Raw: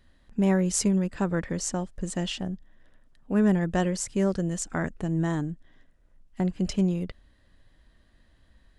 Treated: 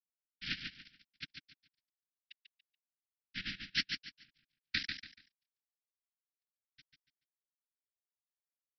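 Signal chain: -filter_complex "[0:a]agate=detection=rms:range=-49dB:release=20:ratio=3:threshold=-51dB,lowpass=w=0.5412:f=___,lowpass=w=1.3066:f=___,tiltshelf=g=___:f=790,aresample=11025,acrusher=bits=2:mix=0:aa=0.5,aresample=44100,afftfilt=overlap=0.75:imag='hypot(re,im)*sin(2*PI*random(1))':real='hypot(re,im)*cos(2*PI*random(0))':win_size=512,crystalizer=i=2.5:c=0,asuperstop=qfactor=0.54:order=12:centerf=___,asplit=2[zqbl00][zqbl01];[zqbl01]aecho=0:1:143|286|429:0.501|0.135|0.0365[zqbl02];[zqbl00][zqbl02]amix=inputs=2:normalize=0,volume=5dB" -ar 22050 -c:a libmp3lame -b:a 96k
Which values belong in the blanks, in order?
2.9k, 2.9k, -9, 690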